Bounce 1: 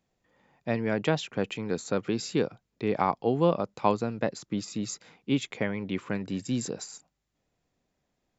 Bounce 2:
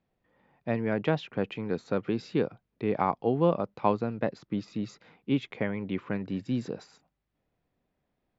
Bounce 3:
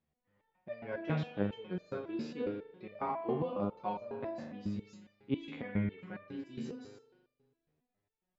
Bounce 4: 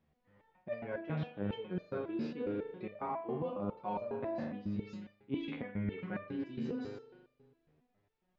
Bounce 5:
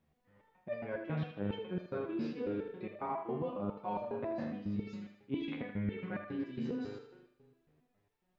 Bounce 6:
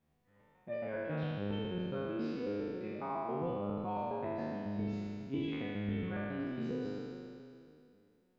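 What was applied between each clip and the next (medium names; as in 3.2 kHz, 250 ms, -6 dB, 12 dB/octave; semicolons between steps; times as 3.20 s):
distance through air 250 m
spring tank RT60 1.4 s, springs 39 ms, chirp 65 ms, DRR 4 dB; resonator arpeggio 7.3 Hz 75–600 Hz; trim +1.5 dB
reverse; compression 6:1, threshold -44 dBFS, peak gain reduction 16.5 dB; reverse; distance through air 200 m; trim +9.5 dB
thinning echo 79 ms, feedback 48%, high-pass 330 Hz, level -9 dB
spectral sustain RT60 2.52 s; trim -3.5 dB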